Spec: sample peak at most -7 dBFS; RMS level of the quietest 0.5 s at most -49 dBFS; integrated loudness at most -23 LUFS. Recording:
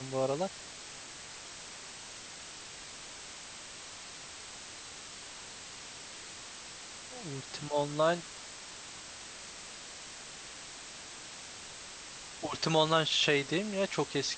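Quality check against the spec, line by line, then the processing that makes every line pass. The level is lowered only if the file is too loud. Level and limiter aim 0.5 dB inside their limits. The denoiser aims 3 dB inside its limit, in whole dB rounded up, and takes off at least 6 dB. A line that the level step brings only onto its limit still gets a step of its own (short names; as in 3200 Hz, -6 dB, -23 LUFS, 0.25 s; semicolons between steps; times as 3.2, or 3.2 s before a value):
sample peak -12.0 dBFS: OK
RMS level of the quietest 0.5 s -47 dBFS: fail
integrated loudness -36.5 LUFS: OK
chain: denoiser 6 dB, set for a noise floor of -47 dBFS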